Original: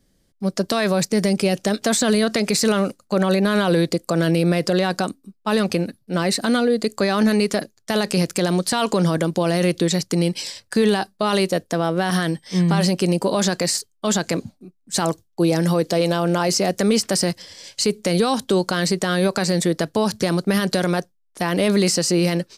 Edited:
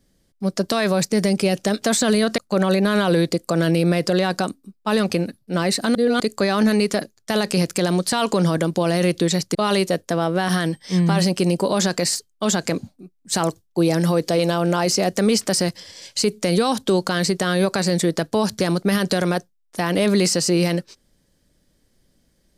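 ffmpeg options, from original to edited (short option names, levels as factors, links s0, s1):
-filter_complex "[0:a]asplit=5[s0][s1][s2][s3][s4];[s0]atrim=end=2.382[s5];[s1]atrim=start=2.978:end=6.552[s6];[s2]atrim=start=6.548:end=6.802,asetpts=PTS-STARTPTS,areverse[s7];[s3]atrim=start=6.798:end=10.152[s8];[s4]atrim=start=11.168[s9];[s5][s6]acrossfade=d=0.004:c1=hsin:c2=hsin[s10];[s10][s7]acrossfade=d=0.004:c1=hsin:c2=hsin[s11];[s11][s8]acrossfade=d=0.004:c1=hsin:c2=hsin[s12];[s12][s9]acrossfade=d=0.004:c1=hsin:c2=hsin"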